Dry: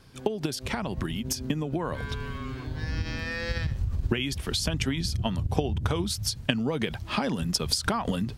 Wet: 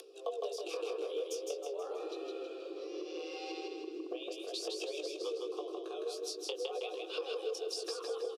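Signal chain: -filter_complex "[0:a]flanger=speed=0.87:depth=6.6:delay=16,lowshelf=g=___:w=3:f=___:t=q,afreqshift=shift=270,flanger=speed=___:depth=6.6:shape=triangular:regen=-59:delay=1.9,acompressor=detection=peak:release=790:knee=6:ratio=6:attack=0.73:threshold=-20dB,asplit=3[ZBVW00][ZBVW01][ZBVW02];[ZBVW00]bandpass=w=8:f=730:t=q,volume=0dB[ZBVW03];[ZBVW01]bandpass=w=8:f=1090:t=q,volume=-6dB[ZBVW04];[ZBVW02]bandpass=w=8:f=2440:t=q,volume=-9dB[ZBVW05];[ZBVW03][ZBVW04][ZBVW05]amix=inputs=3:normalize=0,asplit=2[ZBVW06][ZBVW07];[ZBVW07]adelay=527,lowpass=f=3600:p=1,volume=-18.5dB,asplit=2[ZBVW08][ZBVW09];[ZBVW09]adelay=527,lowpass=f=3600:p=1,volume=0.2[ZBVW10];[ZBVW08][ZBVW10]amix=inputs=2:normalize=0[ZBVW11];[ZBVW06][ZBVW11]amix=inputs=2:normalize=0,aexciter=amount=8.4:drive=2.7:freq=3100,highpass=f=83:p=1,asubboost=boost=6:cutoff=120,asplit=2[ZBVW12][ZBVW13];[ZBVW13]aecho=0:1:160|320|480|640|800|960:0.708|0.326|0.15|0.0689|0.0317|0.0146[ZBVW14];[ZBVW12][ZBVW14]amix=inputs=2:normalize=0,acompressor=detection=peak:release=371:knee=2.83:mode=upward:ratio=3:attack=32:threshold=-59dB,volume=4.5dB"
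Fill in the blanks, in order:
12, 290, 0.42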